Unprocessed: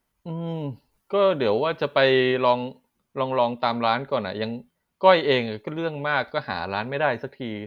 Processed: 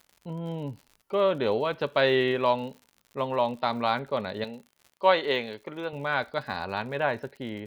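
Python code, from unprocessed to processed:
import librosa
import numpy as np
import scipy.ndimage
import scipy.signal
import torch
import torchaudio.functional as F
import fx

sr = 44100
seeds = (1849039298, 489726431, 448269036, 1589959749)

y = fx.highpass(x, sr, hz=390.0, slope=6, at=(4.44, 5.93))
y = fx.dmg_crackle(y, sr, seeds[0], per_s=70.0, level_db=-37.0)
y = y * 10.0 ** (-4.0 / 20.0)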